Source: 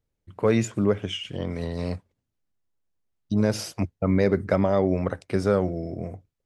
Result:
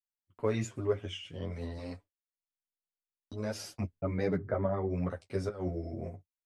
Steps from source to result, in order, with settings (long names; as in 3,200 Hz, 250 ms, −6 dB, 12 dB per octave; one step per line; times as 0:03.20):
noise gate −41 dBFS, range −30 dB
0:01.78–0:03.62: parametric band 140 Hz −13 dB 0.99 octaves
0:05.48–0:06.10: compressor whose output falls as the input rises −25 dBFS, ratio −0.5
flanger 0.47 Hz, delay 6 ms, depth 6.6 ms, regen −33%
0:04.37–0:04.90: Savitzky-Golay smoothing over 41 samples
multi-voice chorus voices 6, 0.96 Hz, delay 10 ms, depth 3 ms
level −3 dB